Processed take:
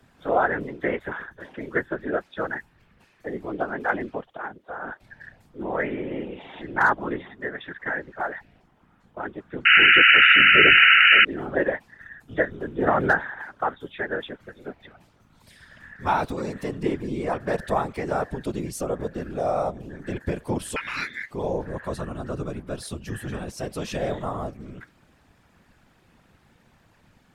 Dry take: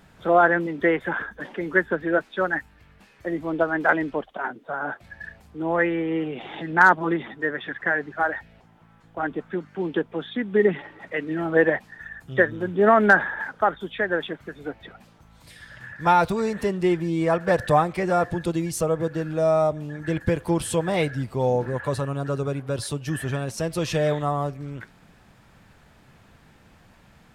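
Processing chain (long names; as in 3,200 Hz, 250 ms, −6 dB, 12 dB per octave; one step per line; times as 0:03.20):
random phases in short frames
0:09.65–0:11.25: sound drawn into the spectrogram noise 1,300–3,000 Hz −9 dBFS
0:20.76–0:21.31: ring modulation 1,900 Hz
level −5 dB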